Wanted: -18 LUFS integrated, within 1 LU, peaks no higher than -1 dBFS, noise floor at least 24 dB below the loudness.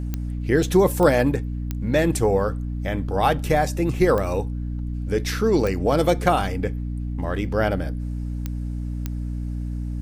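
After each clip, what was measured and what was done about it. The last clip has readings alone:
clicks 7; hum 60 Hz; harmonics up to 300 Hz; hum level -25 dBFS; loudness -23.0 LUFS; peak -5.0 dBFS; loudness target -18.0 LUFS
-> de-click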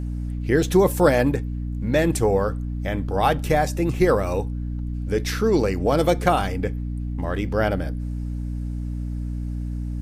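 clicks 0; hum 60 Hz; harmonics up to 300 Hz; hum level -25 dBFS
-> de-hum 60 Hz, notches 5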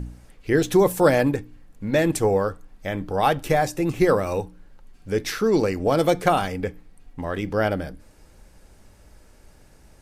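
hum none; loudness -22.5 LUFS; peak -4.5 dBFS; loudness target -18.0 LUFS
-> gain +4.5 dB; limiter -1 dBFS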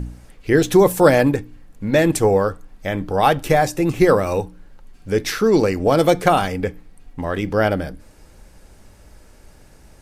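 loudness -18.0 LUFS; peak -1.0 dBFS; noise floor -48 dBFS

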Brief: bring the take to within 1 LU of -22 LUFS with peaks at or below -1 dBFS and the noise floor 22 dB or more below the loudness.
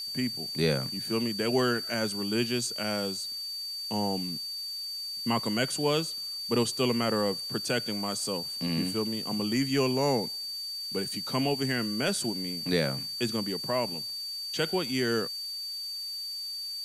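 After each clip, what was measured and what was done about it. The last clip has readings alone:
steady tone 4600 Hz; tone level -34 dBFS; noise floor -37 dBFS; noise floor target -52 dBFS; loudness -29.5 LUFS; peak -13.0 dBFS; loudness target -22.0 LUFS
-> notch 4600 Hz, Q 30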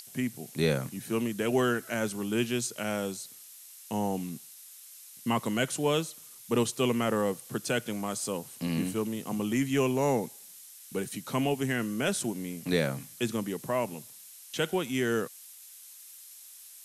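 steady tone none; noise floor -50 dBFS; noise floor target -53 dBFS
-> denoiser 6 dB, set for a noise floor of -50 dBFS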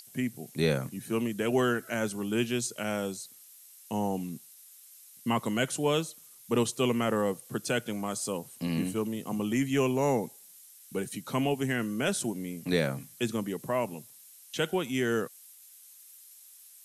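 noise floor -54 dBFS; loudness -31.0 LUFS; peak -14.0 dBFS; loudness target -22.0 LUFS
-> gain +9 dB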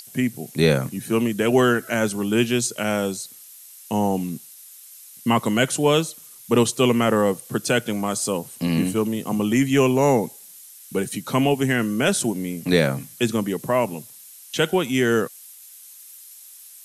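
loudness -22.0 LUFS; peak -5.0 dBFS; noise floor -45 dBFS

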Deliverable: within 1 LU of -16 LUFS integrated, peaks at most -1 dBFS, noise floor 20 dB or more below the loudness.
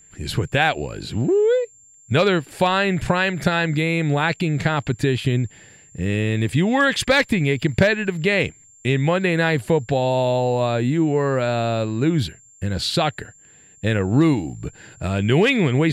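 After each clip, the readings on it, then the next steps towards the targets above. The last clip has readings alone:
steady tone 7300 Hz; tone level -48 dBFS; loudness -20.5 LUFS; peak -3.0 dBFS; loudness target -16.0 LUFS
-> notch 7300 Hz, Q 30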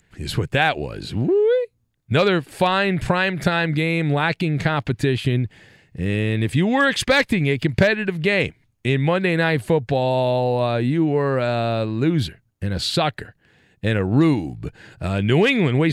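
steady tone none; loudness -20.5 LUFS; peak -3.0 dBFS; loudness target -16.0 LUFS
-> gain +4.5 dB; limiter -1 dBFS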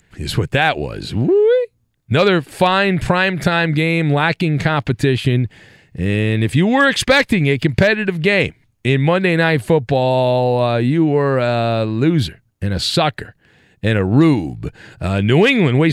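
loudness -16.0 LUFS; peak -1.0 dBFS; noise floor -60 dBFS

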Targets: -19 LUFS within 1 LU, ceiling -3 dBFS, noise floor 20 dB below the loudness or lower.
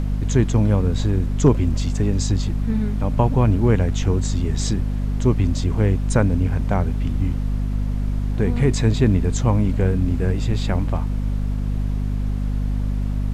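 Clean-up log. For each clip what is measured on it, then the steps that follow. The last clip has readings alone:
hum 50 Hz; harmonics up to 250 Hz; hum level -19 dBFS; noise floor -23 dBFS; noise floor target -41 dBFS; loudness -21.0 LUFS; peak -3.0 dBFS; loudness target -19.0 LUFS
-> de-hum 50 Hz, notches 5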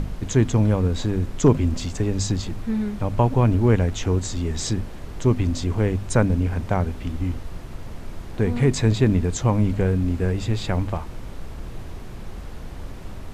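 hum none; noise floor -36 dBFS; noise floor target -43 dBFS
-> noise print and reduce 7 dB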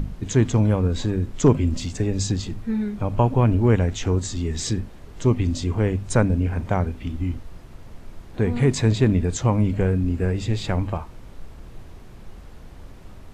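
noise floor -42 dBFS; noise floor target -43 dBFS
-> noise print and reduce 6 dB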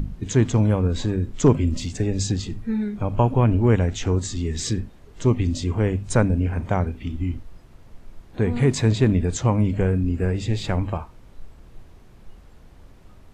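noise floor -48 dBFS; loudness -22.5 LUFS; peak -5.5 dBFS; loudness target -19.0 LUFS
-> gain +3.5 dB; limiter -3 dBFS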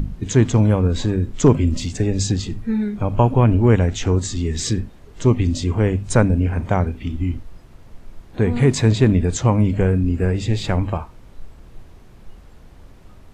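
loudness -19.0 LUFS; peak -3.0 dBFS; noise floor -44 dBFS

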